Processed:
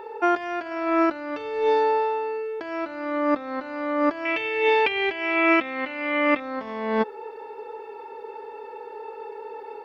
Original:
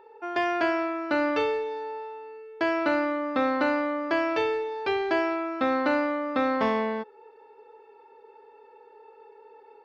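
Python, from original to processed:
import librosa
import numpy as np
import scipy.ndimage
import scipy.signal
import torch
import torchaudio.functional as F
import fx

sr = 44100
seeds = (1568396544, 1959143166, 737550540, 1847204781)

y = fx.over_compress(x, sr, threshold_db=-32.0, ratio=-0.5)
y = fx.band_shelf(y, sr, hz=2500.0, db=14.0, octaves=1.0, at=(4.25, 6.4))
y = y * librosa.db_to_amplitude(8.0)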